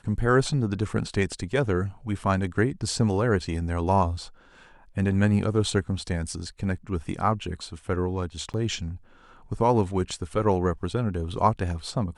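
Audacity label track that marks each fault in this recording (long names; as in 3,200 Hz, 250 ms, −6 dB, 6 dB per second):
8.530000	8.540000	drop-out 8.8 ms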